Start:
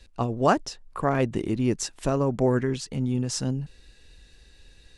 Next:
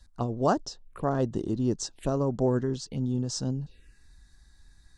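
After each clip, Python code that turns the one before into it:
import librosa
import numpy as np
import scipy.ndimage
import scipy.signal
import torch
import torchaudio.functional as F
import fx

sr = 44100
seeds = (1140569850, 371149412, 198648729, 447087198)

y = fx.env_phaser(x, sr, low_hz=410.0, high_hz=2300.0, full_db=-26.5)
y = F.gain(torch.from_numpy(y), -2.5).numpy()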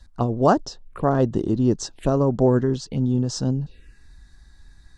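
y = fx.high_shelf(x, sr, hz=5200.0, db=-8.5)
y = F.gain(torch.from_numpy(y), 7.5).numpy()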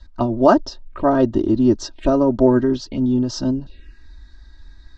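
y = scipy.signal.sosfilt(scipy.signal.butter(4, 5600.0, 'lowpass', fs=sr, output='sos'), x)
y = y + 0.9 * np.pad(y, (int(3.2 * sr / 1000.0), 0))[:len(y)]
y = F.gain(torch.from_numpy(y), 1.5).numpy()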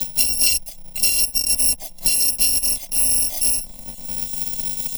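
y = fx.bit_reversed(x, sr, seeds[0], block=256)
y = fx.fixed_phaser(y, sr, hz=380.0, stages=6)
y = fx.band_squash(y, sr, depth_pct=100)
y = F.gain(torch.from_numpy(y), -2.0).numpy()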